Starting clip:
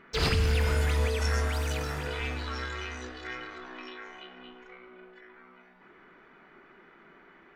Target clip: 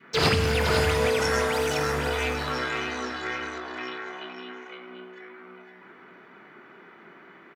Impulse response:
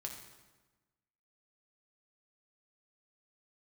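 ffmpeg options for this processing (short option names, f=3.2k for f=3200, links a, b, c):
-filter_complex "[0:a]asplit=2[a][b];[b]aecho=0:1:511:0.501[c];[a][c]amix=inputs=2:normalize=0,adynamicequalizer=threshold=0.00562:dfrequency=720:dqfactor=0.76:tfrequency=720:tqfactor=0.76:attack=5:release=100:ratio=0.375:range=2:mode=boostabove:tftype=bell,highpass=f=93:w=0.5412,highpass=f=93:w=1.3066,volume=5dB"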